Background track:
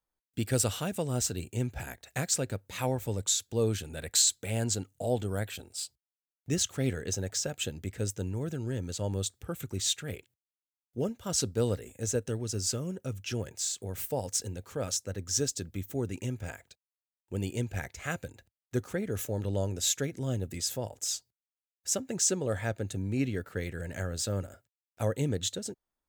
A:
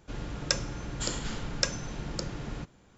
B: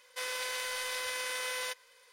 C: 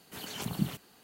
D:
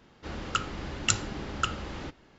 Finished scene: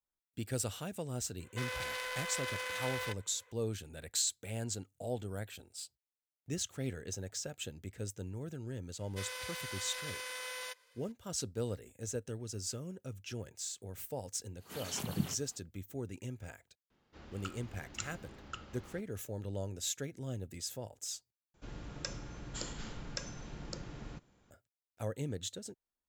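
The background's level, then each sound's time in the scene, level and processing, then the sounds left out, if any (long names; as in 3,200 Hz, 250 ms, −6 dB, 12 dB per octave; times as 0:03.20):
background track −8.5 dB
0:01.40: mix in B −1 dB + adaptive Wiener filter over 9 samples
0:09.00: mix in B −6.5 dB
0:14.58: mix in C −3.5 dB, fades 0.05 s
0:16.90: mix in D −16 dB
0:21.54: overwrite with A −9 dB + brickwall limiter −10.5 dBFS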